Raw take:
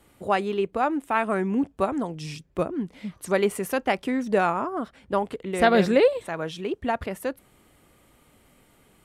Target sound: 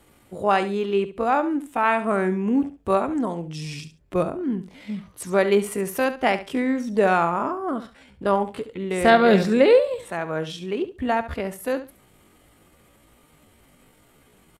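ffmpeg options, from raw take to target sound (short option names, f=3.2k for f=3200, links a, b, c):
-af "atempo=0.62,aecho=1:1:70|140:0.224|0.0448,volume=2.5dB"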